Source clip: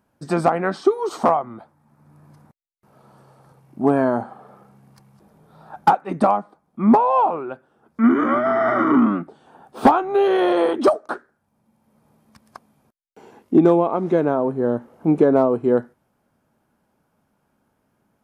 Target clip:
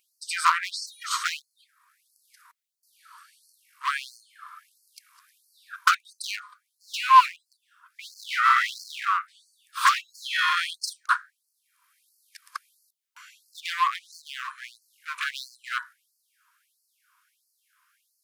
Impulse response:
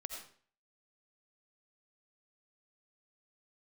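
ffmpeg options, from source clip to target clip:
-filter_complex "[0:a]asplit=2[a][b];[b]aeval=exprs='0.1*(abs(mod(val(0)/0.1+3,4)-2)-1)':c=same,volume=-9.5dB[c];[a][c]amix=inputs=2:normalize=0,afftfilt=real='re*gte(b*sr/1024,940*pow(4300/940,0.5+0.5*sin(2*PI*1.5*pts/sr)))':imag='im*gte(b*sr/1024,940*pow(4300/940,0.5+0.5*sin(2*PI*1.5*pts/sr)))':win_size=1024:overlap=0.75,volume=7dB"

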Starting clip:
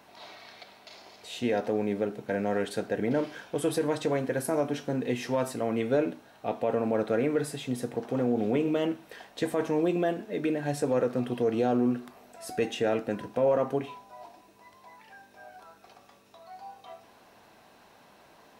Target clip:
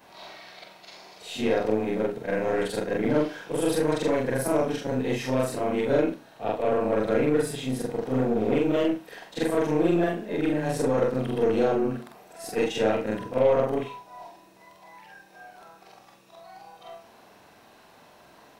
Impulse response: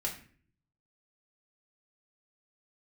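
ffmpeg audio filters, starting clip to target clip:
-af "afftfilt=real='re':imag='-im':win_size=4096:overlap=0.75,aeval=exprs='0.133*(cos(1*acos(clip(val(0)/0.133,-1,1)))-cos(1*PI/2))+0.00531*(cos(8*acos(clip(val(0)/0.133,-1,1)))-cos(8*PI/2))':c=same,volume=7.5dB"

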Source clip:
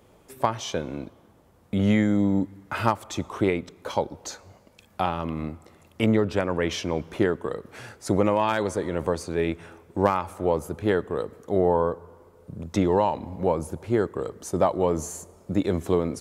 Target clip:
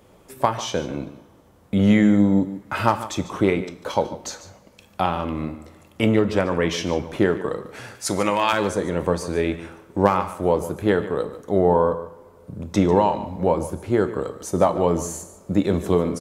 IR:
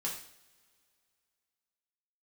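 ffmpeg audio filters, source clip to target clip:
-filter_complex "[0:a]asettb=1/sr,asplit=3[a][b][c];[a]atrim=end=7.954[d];[b]atrim=start=7.95:end=8.53,asetpts=PTS-STARTPTS,afade=t=in:d=0.004:c=qsin,afade=t=out:st=0.576:d=0.004:c=qsin,tiltshelf=f=970:g=-8[e];[c]atrim=start=8.526[f];[d][e]acrossfade=d=0.004:c1=hsin:c2=qsin[g];[g][f]acrossfade=d=0.004:c1=qsin:c2=hsin,aecho=1:1:146:0.188,asplit=2[h][i];[1:a]atrim=start_sample=2205[j];[i][j]afir=irnorm=-1:irlink=0,volume=-9dB[k];[h][k]amix=inputs=2:normalize=0,volume=1.5dB"

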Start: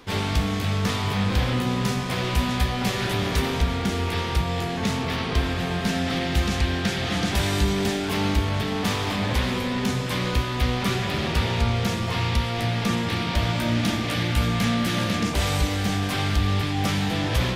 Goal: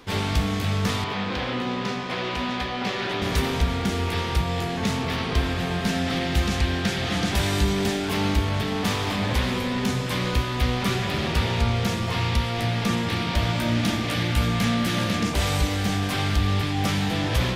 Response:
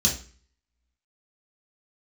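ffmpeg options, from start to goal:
-filter_complex "[0:a]asettb=1/sr,asplit=3[a][b][c];[a]atrim=end=1.044[d];[b]atrim=start=1.04:end=3.22,asetpts=PTS-STARTPTS,afade=t=in:d=0.004:c=qsin,afade=t=out:st=2.176:d=0.004:c=qsin,acrossover=split=200 5300:gain=0.2 1 0.112[e][f][g];[e][f][g]amix=inputs=3:normalize=0[h];[c]atrim=start=3.216[i];[d][h]acrossfade=d=0.004:c1=hsin:c2=qsin[j];[j][i]acrossfade=d=0.004:c1=qsin:c2=hsin"

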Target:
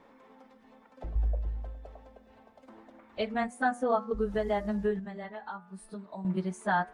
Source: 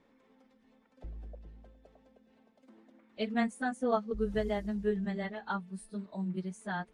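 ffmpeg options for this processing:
-filter_complex "[0:a]alimiter=level_in=4dB:limit=-24dB:level=0:latency=1:release=442,volume=-4dB,equalizer=f=930:t=o:w=1.8:g=9.5,bandreject=f=121.2:t=h:w=4,bandreject=f=242.4:t=h:w=4,bandreject=f=363.6:t=h:w=4,bandreject=f=484.8:t=h:w=4,bandreject=f=606:t=h:w=4,bandreject=f=727.2:t=h:w=4,bandreject=f=848.4:t=h:w=4,bandreject=f=969.6:t=h:w=4,bandreject=f=1.0908k:t=h:w=4,bandreject=f=1.212k:t=h:w=4,bandreject=f=1.3332k:t=h:w=4,bandreject=f=1.4544k:t=h:w=4,bandreject=f=1.5756k:t=h:w=4,bandreject=f=1.6968k:t=h:w=4,bandreject=f=1.818k:t=h:w=4,bandreject=f=1.9392k:t=h:w=4,bandreject=f=2.0604k:t=h:w=4,bandreject=f=2.1816k:t=h:w=4,bandreject=f=2.3028k:t=h:w=4,asettb=1/sr,asplit=3[a][b][c];[a]atrim=end=1.154[d];[b]atrim=start=1.15:end=3.51,asetpts=PTS-STARTPTS,afade=t=in:d=0.004:c=qsin,afade=t=out:st=2.356:d=0.004:c=qsin,lowshelf=f=120:t=q:w=1.5:g=11[e];[c]atrim=start=3.506[f];[d][e]acrossfade=d=0.004:c1=hsin:c2=qsin[g];[g][f]acrossfade=d=0.004:c1=qsin:c2=hsin,asettb=1/sr,asplit=3[h][i][j];[h]atrim=end=4.994[k];[i]atrim=start=4.99:end=6.25,asetpts=PTS-STARTPTS,afade=t=in:d=0.004:c=qsin,afade=t=out:st=1.256:d=0.004:c=qsin,acompressor=threshold=-47dB:ratio=3[l];[j]atrim=start=6.246[m];[k][l]acrossfade=d=0.004:c1=hsin:c2=qsin[n];[n][m]acrossfade=d=0.004:c1=qsin:c2=hsin,volume=5dB"

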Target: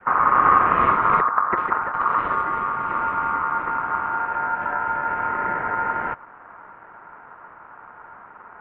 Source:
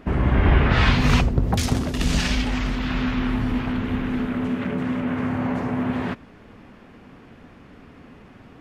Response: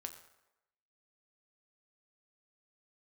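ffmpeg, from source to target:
-af "aeval=exprs='val(0)*sin(2*PI*1500*n/s)':c=same,adynamicequalizer=threshold=0.0316:dfrequency=1300:dqfactor=1.5:tfrequency=1300:tqfactor=1.5:attack=5:release=100:ratio=0.375:range=2.5:mode=cutabove:tftype=bell,highpass=f=460:t=q:w=0.5412,highpass=f=460:t=q:w=1.307,lowpass=f=2.2k:t=q:w=0.5176,lowpass=f=2.2k:t=q:w=0.7071,lowpass=f=2.2k:t=q:w=1.932,afreqshift=-340,volume=6dB"

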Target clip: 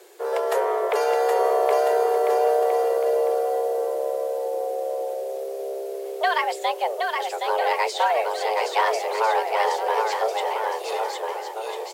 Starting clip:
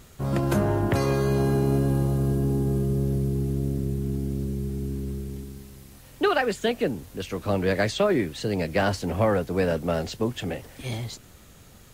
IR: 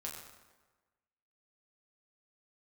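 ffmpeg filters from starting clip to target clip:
-filter_complex "[0:a]afreqshift=330,asplit=2[a][b];[b]aecho=0:1:770|1348|1781|2105|2349:0.631|0.398|0.251|0.158|0.1[c];[a][c]amix=inputs=2:normalize=0"

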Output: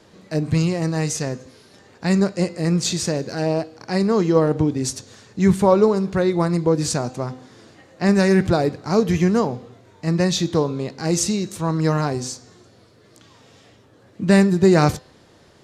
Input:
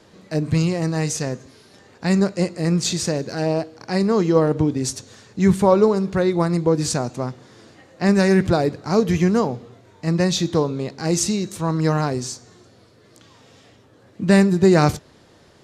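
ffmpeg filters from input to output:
-af "bandreject=f=255.8:t=h:w=4,bandreject=f=511.6:t=h:w=4,bandreject=f=767.4:t=h:w=4,bandreject=f=1.0232k:t=h:w=4,bandreject=f=1.279k:t=h:w=4,bandreject=f=1.5348k:t=h:w=4,bandreject=f=1.7906k:t=h:w=4,bandreject=f=2.0464k:t=h:w=4,bandreject=f=2.3022k:t=h:w=4,bandreject=f=2.558k:t=h:w=4,bandreject=f=2.8138k:t=h:w=4,bandreject=f=3.0696k:t=h:w=4,bandreject=f=3.3254k:t=h:w=4,bandreject=f=3.5812k:t=h:w=4,bandreject=f=3.837k:t=h:w=4,bandreject=f=4.0928k:t=h:w=4,bandreject=f=4.3486k:t=h:w=4,bandreject=f=4.6044k:t=h:w=4,bandreject=f=4.8602k:t=h:w=4,bandreject=f=5.116k:t=h:w=4,bandreject=f=5.3718k:t=h:w=4"

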